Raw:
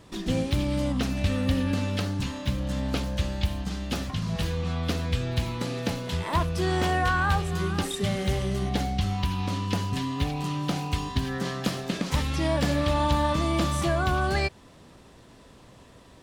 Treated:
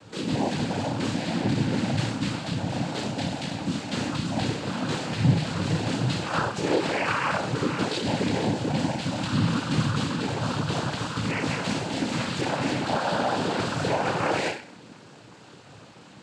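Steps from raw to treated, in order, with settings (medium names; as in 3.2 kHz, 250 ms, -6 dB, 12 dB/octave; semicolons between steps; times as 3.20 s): CVSD coder 32 kbps; peak limiter -20.5 dBFS, peak gain reduction 5.5 dB; chorus 2.3 Hz, delay 15 ms, depth 6.6 ms; on a send: flutter echo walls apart 5.5 m, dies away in 0.45 s; on the sum: noise-vocoded speech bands 8; trim +6 dB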